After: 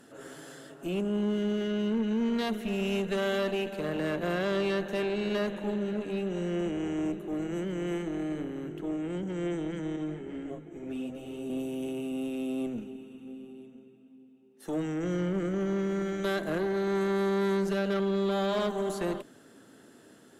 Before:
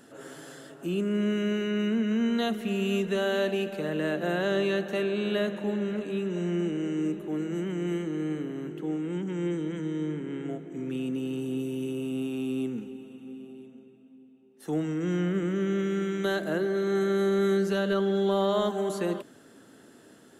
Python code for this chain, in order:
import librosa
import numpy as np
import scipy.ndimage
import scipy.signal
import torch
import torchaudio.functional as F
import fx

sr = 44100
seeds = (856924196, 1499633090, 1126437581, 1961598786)

y = fx.tube_stage(x, sr, drive_db=25.0, bias=0.6)
y = fx.ensemble(y, sr, at=(9.96, 11.5))
y = y * 10.0 ** (1.5 / 20.0)